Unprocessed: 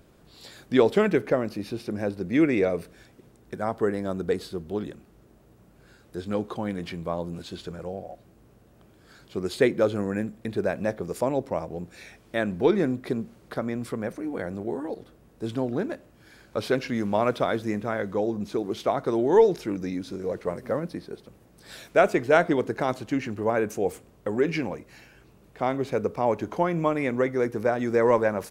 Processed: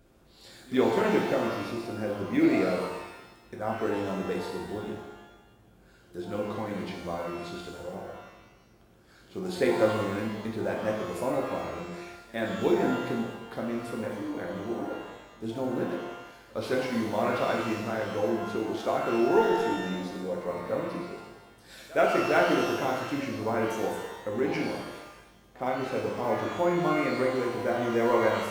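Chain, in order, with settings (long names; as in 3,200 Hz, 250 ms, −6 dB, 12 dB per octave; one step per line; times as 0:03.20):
one scale factor per block 7 bits
echo ahead of the sound 66 ms −23 dB
reverb with rising layers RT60 1 s, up +12 semitones, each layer −8 dB, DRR −1.5 dB
level −7 dB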